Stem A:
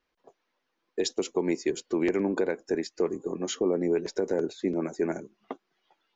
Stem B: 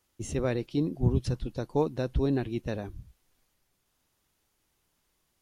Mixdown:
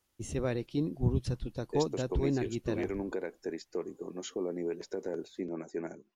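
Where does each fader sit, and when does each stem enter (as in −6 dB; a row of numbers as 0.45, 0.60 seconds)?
−9.0, −3.5 decibels; 0.75, 0.00 seconds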